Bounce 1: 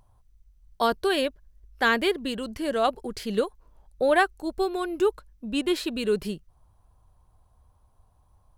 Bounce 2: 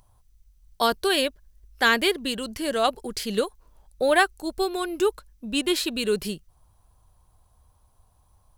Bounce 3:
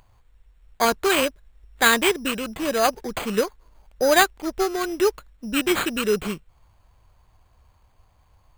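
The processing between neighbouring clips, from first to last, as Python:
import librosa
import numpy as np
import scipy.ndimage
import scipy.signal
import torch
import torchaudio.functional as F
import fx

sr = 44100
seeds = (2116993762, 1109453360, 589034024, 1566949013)

y1 = fx.high_shelf(x, sr, hz=2700.0, db=9.5)
y2 = np.repeat(y1[::8], 8)[:len(y1)]
y2 = y2 * 10.0 ** (2.5 / 20.0)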